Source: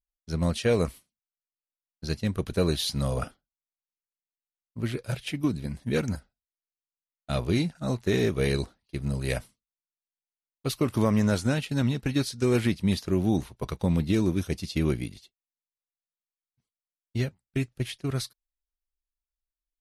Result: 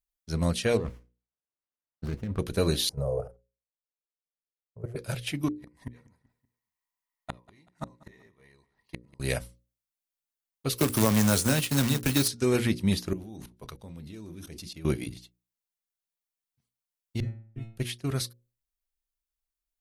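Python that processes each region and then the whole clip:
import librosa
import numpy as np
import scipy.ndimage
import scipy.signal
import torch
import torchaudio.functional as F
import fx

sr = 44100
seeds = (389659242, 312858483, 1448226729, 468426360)

y = fx.chain(x, sr, fx.over_compress(threshold_db=-30.0, ratio=-1.0),
    fx.spacing_loss(db_at_10k=24),
    fx.running_max(window=9), at=(0.77, 2.39))
y = fx.chain(y, sr, fx.curve_eq(hz=(150.0, 290.0, 430.0, 3700.0, 6300.0), db=(0, -24, 13, -30, -16)),
    fx.level_steps(step_db=14), at=(2.89, 4.96))
y = fx.chain(y, sr, fx.small_body(hz=(990.0, 1900.0), ring_ms=20, db=17),
    fx.gate_flip(shuts_db=-23.0, range_db=-36),
    fx.echo_feedback(ms=191, feedback_pct=43, wet_db=-21.0), at=(5.48, 9.2))
y = fx.chain(y, sr, fx.high_shelf(hz=5400.0, db=12.0),
    fx.quant_companded(bits=4),
    fx.band_squash(depth_pct=40), at=(10.78, 12.28))
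y = fx.chain(y, sr, fx.hum_notches(base_hz=60, count=6),
    fx.level_steps(step_db=21), at=(13.13, 14.85))
y = fx.chain(y, sr, fx.tilt_eq(slope=-4.5),
    fx.stiff_resonator(f0_hz=110.0, decay_s=0.71, stiffness=0.002),
    fx.band_widen(depth_pct=40), at=(17.2, 17.77))
y = fx.high_shelf(y, sr, hz=8200.0, db=6.0)
y = fx.hum_notches(y, sr, base_hz=60, count=9)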